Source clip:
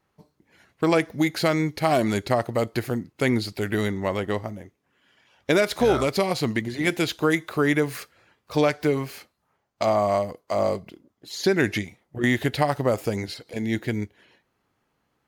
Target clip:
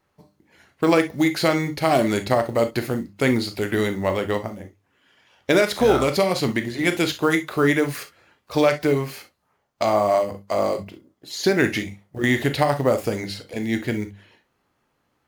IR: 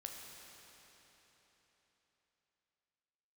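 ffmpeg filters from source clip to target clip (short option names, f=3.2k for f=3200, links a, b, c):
-filter_complex "[0:a]acrusher=bits=8:mode=log:mix=0:aa=0.000001,bandreject=f=50:t=h:w=6,bandreject=f=100:t=h:w=6,bandreject=f=150:t=h:w=6,bandreject=f=200:t=h:w=6[a];[1:a]atrim=start_sample=2205,atrim=end_sample=3087[b];[a][b]afir=irnorm=-1:irlink=0,volume=8dB"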